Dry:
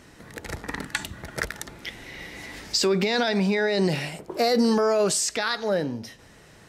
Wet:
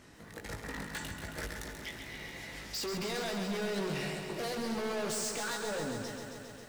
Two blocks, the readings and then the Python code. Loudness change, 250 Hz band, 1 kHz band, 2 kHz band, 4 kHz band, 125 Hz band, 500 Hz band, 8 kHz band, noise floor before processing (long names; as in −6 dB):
−12.5 dB, −12.5 dB, −11.0 dB, −10.0 dB, −11.0 dB, −10.0 dB, −13.0 dB, −9.5 dB, −51 dBFS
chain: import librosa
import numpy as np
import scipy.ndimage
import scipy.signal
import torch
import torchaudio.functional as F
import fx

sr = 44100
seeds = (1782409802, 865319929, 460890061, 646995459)

y = fx.doubler(x, sr, ms=19.0, db=-6.0)
y = np.clip(10.0 ** (28.5 / 20.0) * y, -1.0, 1.0) / 10.0 ** (28.5 / 20.0)
y = fx.echo_crushed(y, sr, ms=135, feedback_pct=80, bits=9, wet_db=-6.5)
y = F.gain(torch.from_numpy(y), -7.0).numpy()